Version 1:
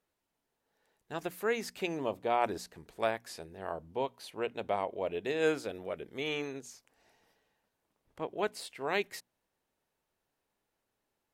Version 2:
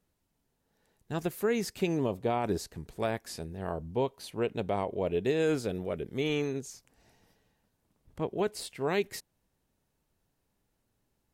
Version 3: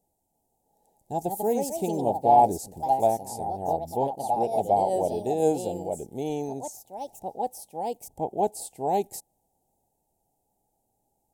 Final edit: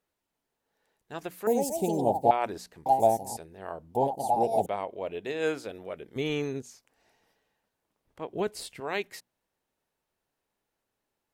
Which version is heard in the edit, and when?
1
1.47–2.31 s: from 3
2.86–3.37 s: from 3
3.95–4.66 s: from 3
6.16–6.62 s: from 2
8.34–8.80 s: from 2

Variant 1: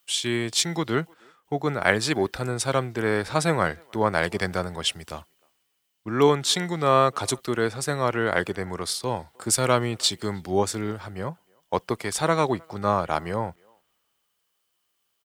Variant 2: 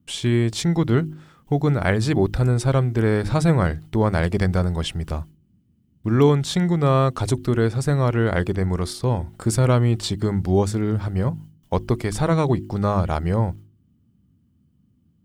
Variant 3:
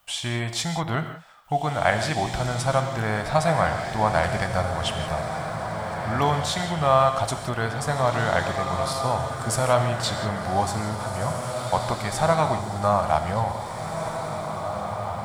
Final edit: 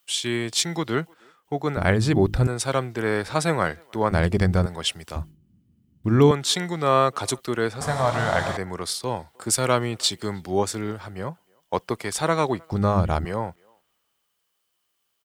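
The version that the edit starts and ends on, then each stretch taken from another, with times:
1
1.77–2.47 s: from 2
4.11–4.66 s: from 2
5.16–6.31 s: from 2
7.81–8.57 s: from 3
12.72–13.25 s: from 2

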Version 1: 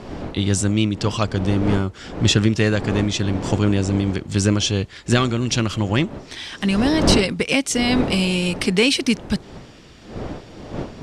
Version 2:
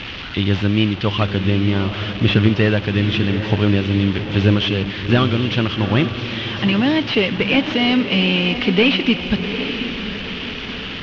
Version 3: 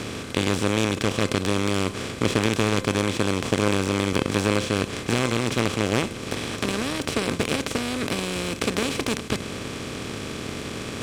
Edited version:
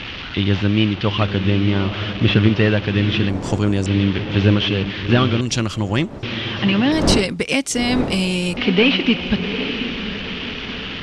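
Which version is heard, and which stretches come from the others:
2
3.29–3.86 s: from 1
5.41–6.23 s: from 1
6.92–8.57 s: from 1
not used: 3

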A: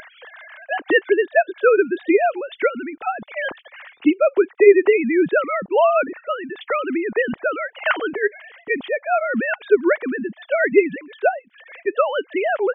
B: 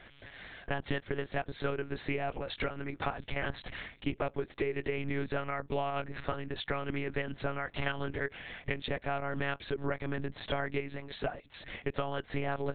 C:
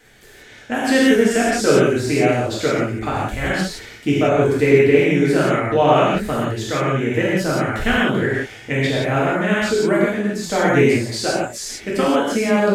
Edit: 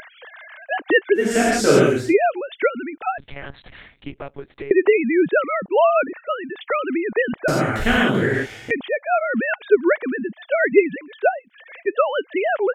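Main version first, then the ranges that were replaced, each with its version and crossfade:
A
1.26–2.03 s: from C, crossfade 0.24 s
3.18–4.71 s: from B
7.48–8.71 s: from C

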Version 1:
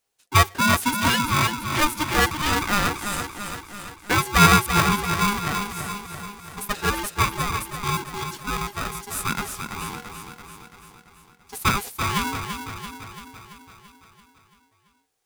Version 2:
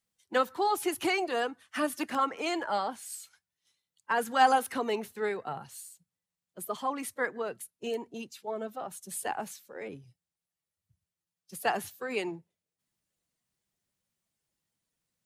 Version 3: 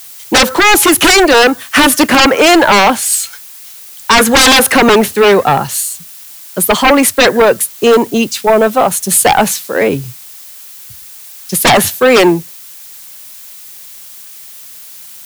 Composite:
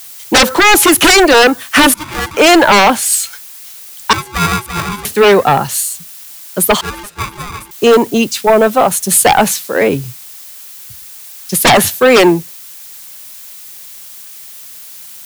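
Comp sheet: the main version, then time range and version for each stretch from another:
3
1.94–2.37 s: from 1
4.13–5.05 s: from 1
6.81–7.71 s: from 1
not used: 2

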